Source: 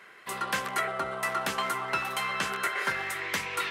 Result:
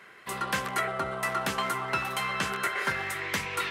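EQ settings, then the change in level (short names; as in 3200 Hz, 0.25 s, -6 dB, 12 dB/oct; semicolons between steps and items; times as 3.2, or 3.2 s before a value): low shelf 190 Hz +8.5 dB; 0.0 dB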